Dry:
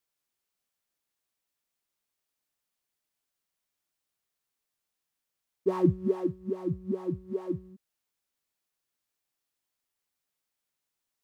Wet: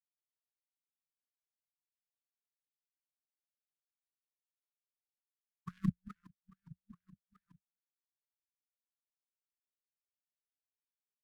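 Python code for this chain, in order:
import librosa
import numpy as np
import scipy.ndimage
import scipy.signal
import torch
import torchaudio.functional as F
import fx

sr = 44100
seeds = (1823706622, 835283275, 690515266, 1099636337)

y = fx.power_curve(x, sr, exponent=3.0)
y = scipy.signal.sosfilt(scipy.signal.ellip(3, 1.0, 40, [200.0, 1500.0], 'bandstop', fs=sr, output='sos'), y)
y = fx.vibrato_shape(y, sr, shape='saw_up', rate_hz=3.9, depth_cents=160.0)
y = y * librosa.db_to_amplitude(5.0)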